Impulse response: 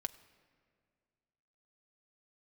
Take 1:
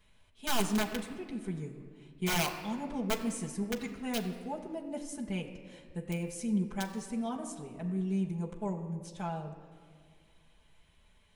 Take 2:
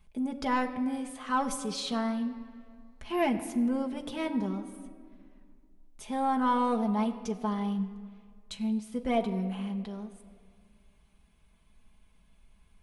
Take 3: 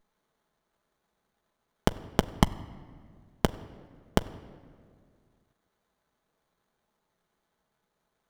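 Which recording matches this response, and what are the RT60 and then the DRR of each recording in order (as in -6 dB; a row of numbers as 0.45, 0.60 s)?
3; not exponential, not exponential, not exponential; -4.0, 2.0, 8.5 dB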